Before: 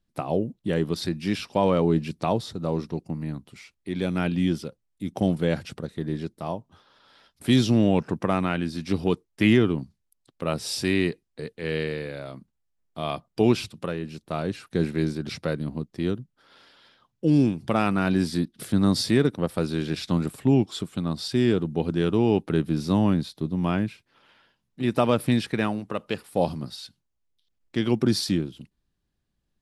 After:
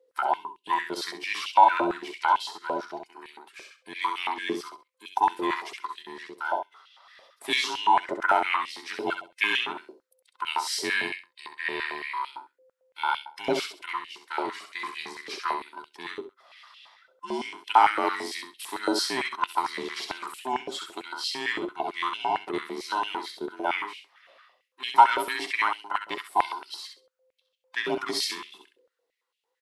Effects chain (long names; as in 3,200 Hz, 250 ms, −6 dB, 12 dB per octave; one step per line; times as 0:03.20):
frequency inversion band by band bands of 500 Hz
repeating echo 66 ms, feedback 23%, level −6 dB
high-pass on a step sequencer 8.9 Hz 530–2,800 Hz
level −1.5 dB